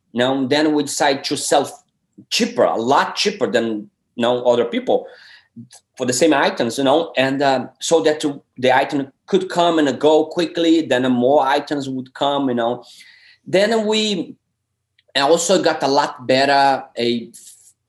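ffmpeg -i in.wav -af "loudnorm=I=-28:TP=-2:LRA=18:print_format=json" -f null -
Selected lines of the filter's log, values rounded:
"input_i" : "-17.5",
"input_tp" : "-2.9",
"input_lra" : "1.5",
"input_thresh" : "-28.2",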